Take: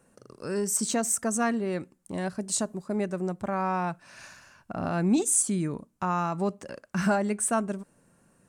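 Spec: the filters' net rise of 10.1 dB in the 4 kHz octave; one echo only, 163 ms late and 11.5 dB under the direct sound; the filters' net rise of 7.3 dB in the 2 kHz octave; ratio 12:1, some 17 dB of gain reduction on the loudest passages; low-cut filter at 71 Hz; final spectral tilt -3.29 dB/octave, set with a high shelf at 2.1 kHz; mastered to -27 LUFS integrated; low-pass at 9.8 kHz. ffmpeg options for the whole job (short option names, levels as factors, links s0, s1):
-af "highpass=71,lowpass=9800,equalizer=f=2000:t=o:g=6.5,highshelf=f=2100:g=4,equalizer=f=4000:t=o:g=7,acompressor=threshold=0.0178:ratio=12,aecho=1:1:163:0.266,volume=3.98"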